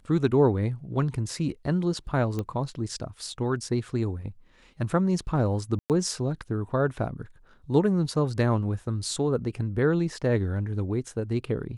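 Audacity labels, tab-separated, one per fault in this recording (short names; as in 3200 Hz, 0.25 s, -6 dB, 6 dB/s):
2.390000	2.390000	pop -18 dBFS
5.790000	5.900000	gap 0.108 s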